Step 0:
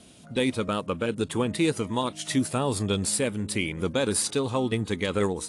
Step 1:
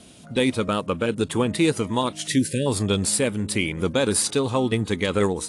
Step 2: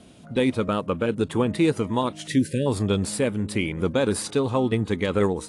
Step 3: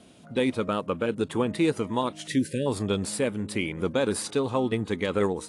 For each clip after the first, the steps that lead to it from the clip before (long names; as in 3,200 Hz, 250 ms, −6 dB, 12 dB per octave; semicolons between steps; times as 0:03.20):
time-frequency box erased 0:02.27–0:02.67, 590–1,500 Hz; level +4 dB
high-shelf EQ 3,000 Hz −10 dB
low-shelf EQ 130 Hz −8 dB; level −2 dB